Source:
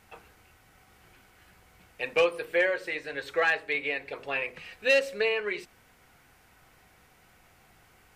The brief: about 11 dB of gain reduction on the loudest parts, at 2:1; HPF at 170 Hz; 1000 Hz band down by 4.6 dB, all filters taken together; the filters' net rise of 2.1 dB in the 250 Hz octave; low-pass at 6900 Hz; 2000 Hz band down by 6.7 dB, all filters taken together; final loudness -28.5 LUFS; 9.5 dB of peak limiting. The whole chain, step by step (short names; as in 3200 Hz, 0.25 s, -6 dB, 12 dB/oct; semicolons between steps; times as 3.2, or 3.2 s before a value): HPF 170 Hz; LPF 6900 Hz; bell 250 Hz +4.5 dB; bell 1000 Hz -4.5 dB; bell 2000 Hz -7.5 dB; compressor 2:1, threshold -41 dBFS; gain +15 dB; limiter -18.5 dBFS